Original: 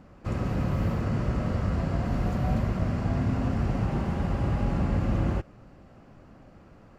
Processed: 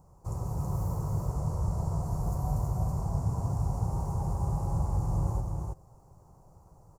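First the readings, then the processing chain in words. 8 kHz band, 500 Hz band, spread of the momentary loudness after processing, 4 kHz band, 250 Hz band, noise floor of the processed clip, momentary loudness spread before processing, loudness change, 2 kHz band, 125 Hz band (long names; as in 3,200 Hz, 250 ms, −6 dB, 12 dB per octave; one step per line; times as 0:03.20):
can't be measured, −7.5 dB, 5 LU, below −10 dB, −9.0 dB, −58 dBFS, 3 LU, −4.0 dB, below −20 dB, −2.0 dB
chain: drawn EQ curve 160 Hz 0 dB, 230 Hz −18 dB, 410 Hz −4 dB, 600 Hz −7 dB, 930 Hz +4 dB, 1,700 Hz −24 dB, 3,200 Hz −24 dB, 6,300 Hz +6 dB, 9,700 Hz +12 dB
on a send: single-tap delay 325 ms −3.5 dB
on the sum: level −3.5 dB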